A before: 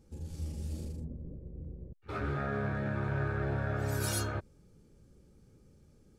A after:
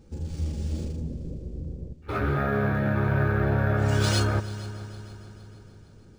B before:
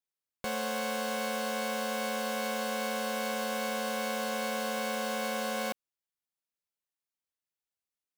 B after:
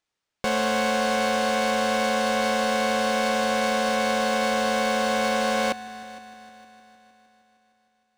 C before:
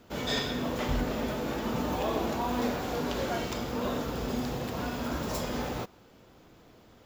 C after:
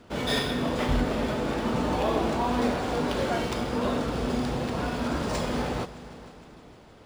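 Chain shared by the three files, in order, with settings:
multi-head echo 0.154 s, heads all three, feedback 56%, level -21.5 dB; decimation joined by straight lines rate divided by 3×; normalise peaks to -12 dBFS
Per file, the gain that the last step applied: +9.0, +10.0, +4.5 dB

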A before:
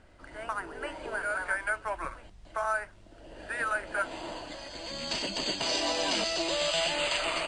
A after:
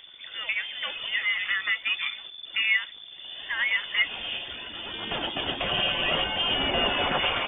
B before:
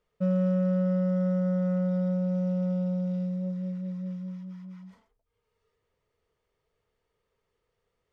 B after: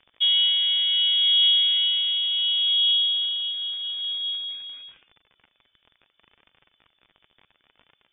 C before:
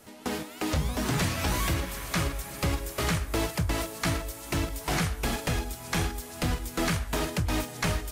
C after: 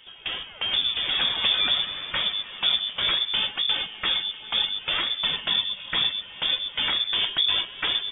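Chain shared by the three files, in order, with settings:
crackle 51/s -40 dBFS; phaser 0.69 Hz, delay 3.1 ms, feedback 33%; inverted band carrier 3500 Hz; normalise peaks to -12 dBFS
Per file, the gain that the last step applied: +4.5, +5.0, +1.5 dB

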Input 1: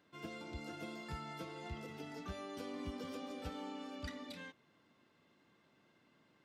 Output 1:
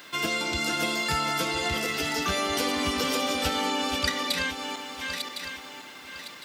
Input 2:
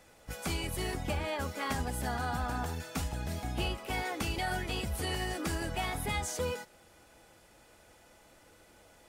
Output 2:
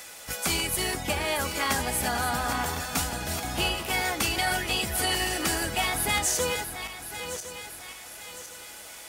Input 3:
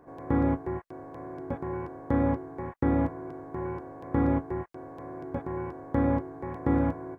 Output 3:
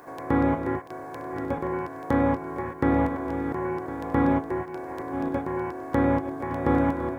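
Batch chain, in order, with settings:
regenerating reverse delay 0.529 s, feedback 51%, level -9 dB; tilt +2 dB/oct; mismatched tape noise reduction encoder only; match loudness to -27 LUFS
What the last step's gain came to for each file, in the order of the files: +18.0, +7.0, +6.0 dB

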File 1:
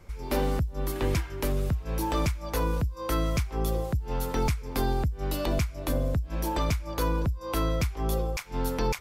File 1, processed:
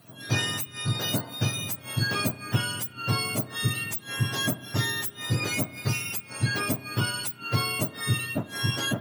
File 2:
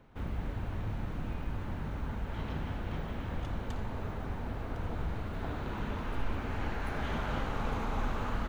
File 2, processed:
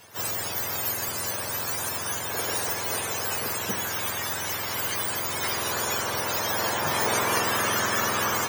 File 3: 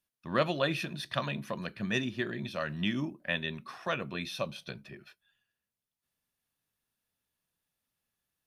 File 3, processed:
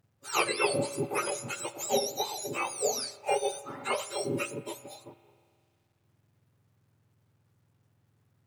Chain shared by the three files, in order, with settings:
spectrum mirrored in octaves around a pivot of 1200 Hz; spring tank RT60 2.3 s, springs 32 ms, chirp 65 ms, DRR 15.5 dB; companded quantiser 8-bit; normalise peaks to -12 dBFS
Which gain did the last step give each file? +3.0, +16.0, +5.0 dB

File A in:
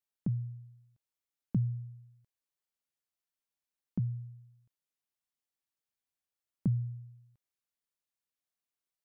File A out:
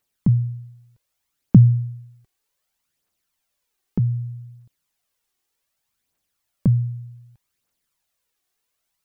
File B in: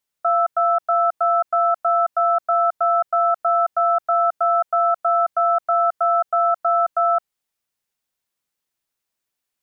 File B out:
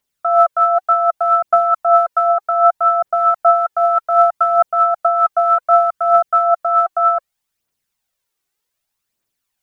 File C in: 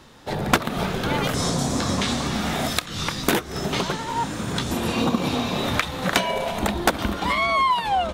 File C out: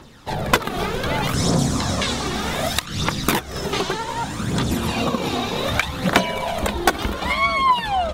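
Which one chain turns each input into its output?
phaser 0.65 Hz, delay 2.8 ms, feedback 49%; normalise peaks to -2 dBFS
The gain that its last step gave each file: +13.5, +3.5, +1.0 dB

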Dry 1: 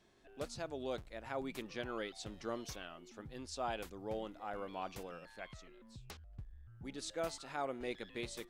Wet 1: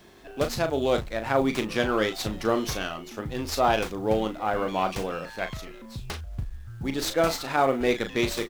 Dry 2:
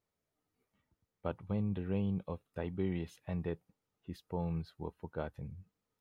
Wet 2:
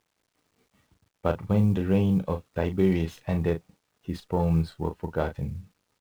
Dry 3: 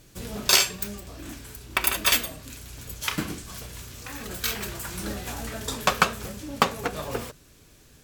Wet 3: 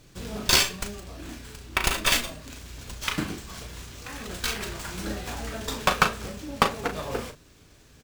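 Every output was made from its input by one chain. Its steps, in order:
doubler 37 ms -8.5 dB; companded quantiser 8-bit; running maximum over 3 samples; match loudness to -27 LUFS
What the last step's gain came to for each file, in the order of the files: +16.5, +12.0, 0.0 dB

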